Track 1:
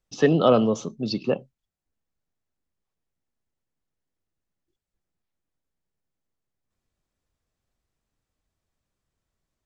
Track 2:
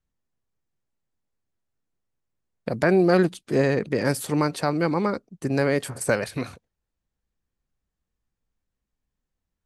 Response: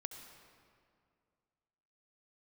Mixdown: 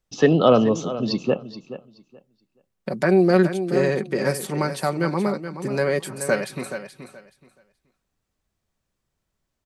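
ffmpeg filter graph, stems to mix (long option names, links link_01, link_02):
-filter_complex "[0:a]volume=2.5dB,asplit=2[link_01][link_02];[link_02]volume=-14dB[link_03];[1:a]highpass=frequency=130:width=0.5412,highpass=frequency=130:width=1.3066,aecho=1:1:5.3:0.52,adelay=200,volume=-1dB,asplit=2[link_04][link_05];[link_05]volume=-10dB[link_06];[link_03][link_06]amix=inputs=2:normalize=0,aecho=0:1:426|852|1278:1|0.2|0.04[link_07];[link_01][link_04][link_07]amix=inputs=3:normalize=0"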